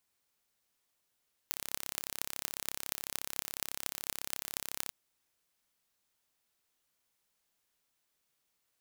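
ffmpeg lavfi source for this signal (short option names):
-f lavfi -i "aevalsrc='0.562*eq(mod(n,1297),0)*(0.5+0.5*eq(mod(n,10376),0))':d=3.4:s=44100"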